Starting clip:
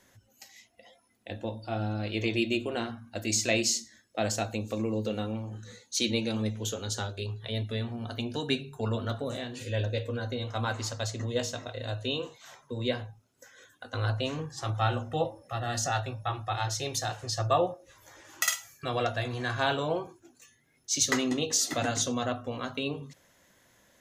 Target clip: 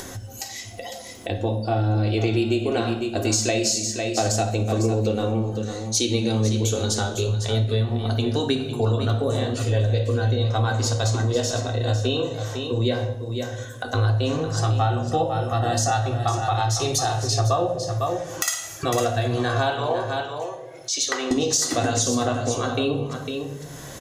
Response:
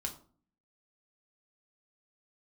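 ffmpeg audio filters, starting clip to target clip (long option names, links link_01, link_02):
-filter_complex "[0:a]asettb=1/sr,asplit=3[link_01][link_02][link_03];[link_01]atrim=end=19.704[link_04];[link_02]atrim=start=19.7:end=21.31,asetpts=PTS-STARTPTS,afade=type=in:duration=0.004:curve=qsin,afade=type=out:start_time=1.606:duration=0.004:curve=qsin,acrossover=split=450 4500:gain=0.0708 1 0.251[link_05][link_06][link_07];[link_05][link_06][link_07]amix=inputs=3:normalize=0[link_08];[link_03]atrim=start=21.306[link_09];[link_04][link_08]acrossfade=duration=0.004:curve1=hsin:curve2=qsin[link_10];[link_10][link_09]acrossfade=duration=0.004:curve1=qsin:curve2=hsin,aecho=1:1:503:0.299,asplit=2[link_11][link_12];[1:a]atrim=start_sample=2205,asetrate=22491,aresample=44100[link_13];[link_12][link_13]afir=irnorm=-1:irlink=0,volume=-2dB[link_14];[link_11][link_14]amix=inputs=2:normalize=0,acompressor=threshold=-23dB:ratio=5,equalizer=frequency=2200:width=1.1:gain=-7.5,acompressor=mode=upward:threshold=-29dB:ratio=2.5,alimiter=level_in=8.5dB:limit=-1dB:release=50:level=0:latency=1,volume=-3dB"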